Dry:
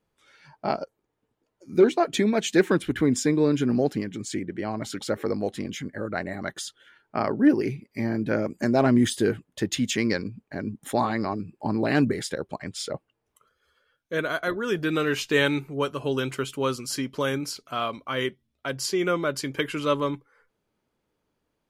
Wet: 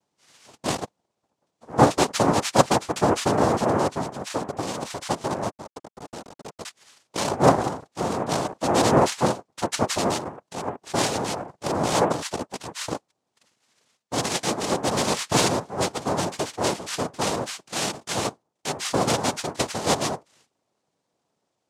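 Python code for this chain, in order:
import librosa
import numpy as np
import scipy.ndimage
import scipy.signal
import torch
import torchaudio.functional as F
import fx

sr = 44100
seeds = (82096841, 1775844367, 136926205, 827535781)

y = fx.schmitt(x, sr, flips_db=-27.0, at=(5.5, 6.65))
y = fx.quant_float(y, sr, bits=6)
y = fx.noise_vocoder(y, sr, seeds[0], bands=2)
y = y * 10.0 ** (1.0 / 20.0)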